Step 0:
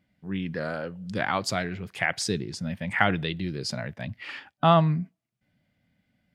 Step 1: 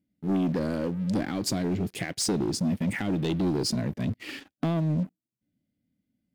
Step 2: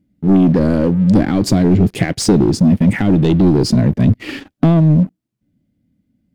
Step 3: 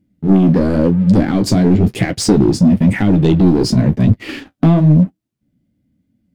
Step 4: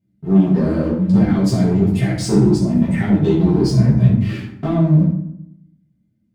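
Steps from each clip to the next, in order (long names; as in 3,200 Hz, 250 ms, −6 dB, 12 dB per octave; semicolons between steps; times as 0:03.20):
downward compressor 6 to 1, threshold −27 dBFS, peak gain reduction 12.5 dB; drawn EQ curve 150 Hz 0 dB, 300 Hz +10 dB, 1,000 Hz −15 dB, 11,000 Hz +4 dB; leveller curve on the samples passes 3; level −4 dB
spectral tilt −2 dB per octave; in parallel at +2.5 dB: speech leveller 0.5 s; on the sum: level +4 dB
flanger 0.97 Hz, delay 8.8 ms, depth 9.4 ms, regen −33%; level +4 dB
convolution reverb RT60 0.75 s, pre-delay 4 ms, DRR −8.5 dB; level −14 dB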